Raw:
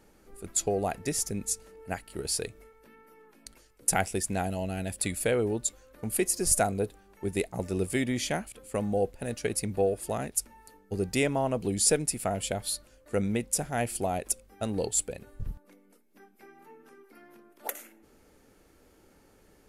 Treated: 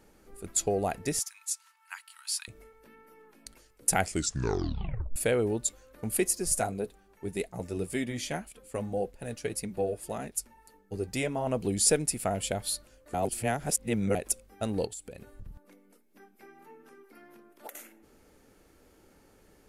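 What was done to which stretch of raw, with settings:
1.19–2.48 s: rippled Chebyshev high-pass 910 Hz, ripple 3 dB
4.00 s: tape stop 1.16 s
6.33–11.47 s: flange 1.8 Hz, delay 4.1 ms, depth 4.2 ms, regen -44%
13.14–14.15 s: reverse
14.85–17.75 s: compression 16:1, threshold -38 dBFS

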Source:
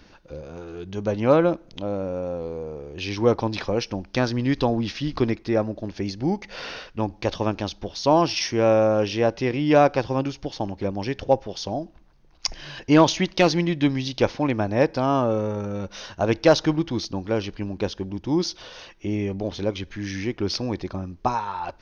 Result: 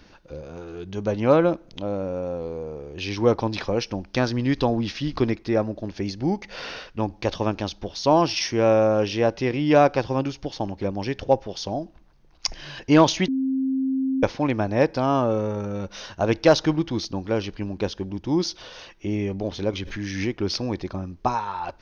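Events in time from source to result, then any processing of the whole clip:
13.28–14.23 s: bleep 265 Hz -20.5 dBFS
19.73–20.35 s: swell ahead of each attack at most 50 dB/s

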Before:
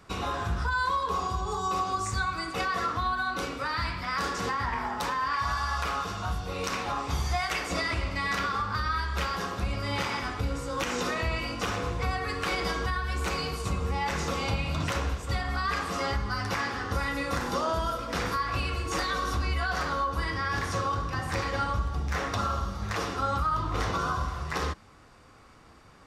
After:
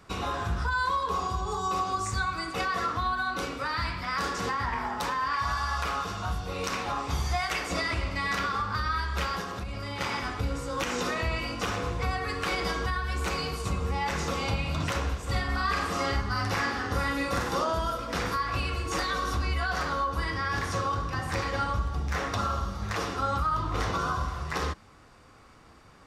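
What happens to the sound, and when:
9.40–10.01 s: compression, threshold -31 dBFS
15.21–17.64 s: doubling 47 ms -4 dB

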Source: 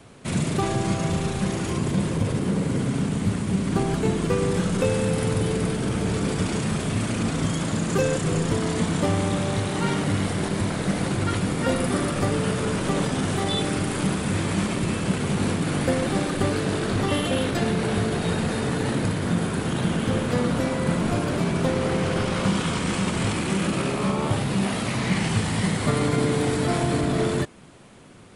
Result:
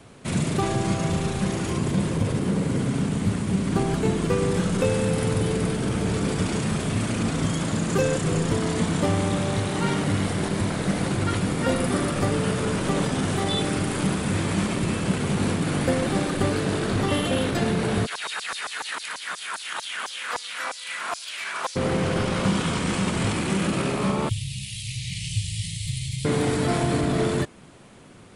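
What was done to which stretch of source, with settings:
18.05–21.75 s: LFO high-pass saw down 9.2 Hz -> 1.6 Hz 890–5800 Hz
24.29–26.25 s: inverse Chebyshev band-stop 230–1500 Hz

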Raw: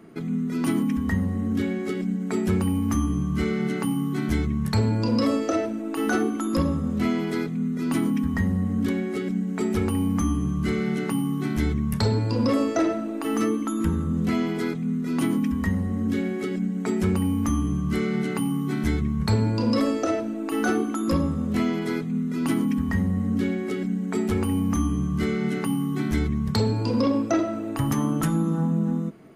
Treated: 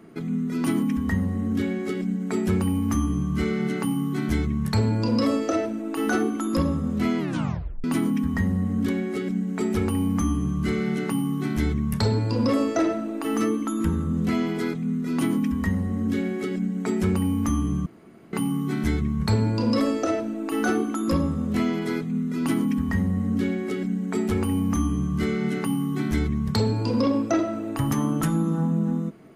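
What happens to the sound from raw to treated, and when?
7.19 s: tape stop 0.65 s
17.86–18.33 s: room tone

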